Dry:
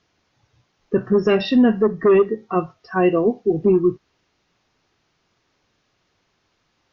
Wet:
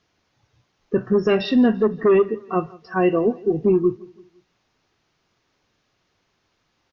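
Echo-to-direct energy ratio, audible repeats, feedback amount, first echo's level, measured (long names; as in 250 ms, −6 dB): −21.5 dB, 2, 43%, −22.5 dB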